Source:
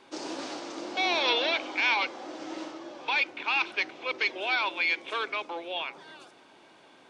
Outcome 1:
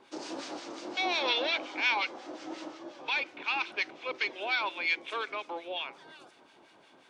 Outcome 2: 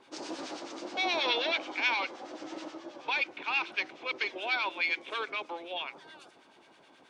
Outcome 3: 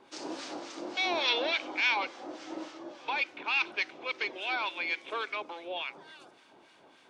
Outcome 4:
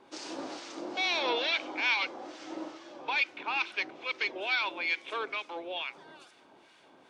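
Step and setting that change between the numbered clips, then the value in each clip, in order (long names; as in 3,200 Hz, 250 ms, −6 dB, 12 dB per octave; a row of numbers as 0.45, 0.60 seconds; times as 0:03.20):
two-band tremolo in antiphase, speed: 5.6, 9.4, 3.5, 2.3 Hertz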